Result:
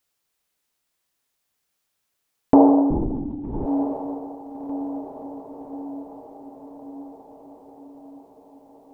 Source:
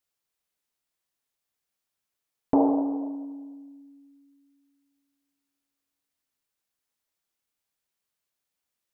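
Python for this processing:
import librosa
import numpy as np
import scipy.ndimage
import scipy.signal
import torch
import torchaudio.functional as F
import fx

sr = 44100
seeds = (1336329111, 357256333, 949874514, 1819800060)

y = fx.echo_diffused(x, sr, ms=1244, feedback_pct=57, wet_db=-10.0)
y = fx.lpc_vocoder(y, sr, seeds[0], excitation='whisper', order=8, at=(2.9, 3.66))
y = F.gain(torch.from_numpy(y), 8.0).numpy()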